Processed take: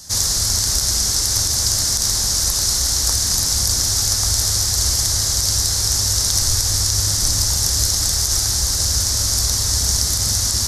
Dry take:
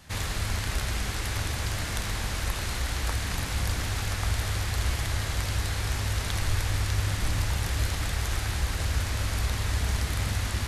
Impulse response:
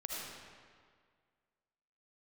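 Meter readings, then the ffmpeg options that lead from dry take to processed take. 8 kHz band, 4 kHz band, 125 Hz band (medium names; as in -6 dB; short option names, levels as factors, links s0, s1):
+22.0 dB, +17.0 dB, +3.5 dB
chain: -af "highshelf=f=3800:t=q:w=3:g=13.5,alimiter=level_in=1.68:limit=0.891:release=50:level=0:latency=1,volume=0.891"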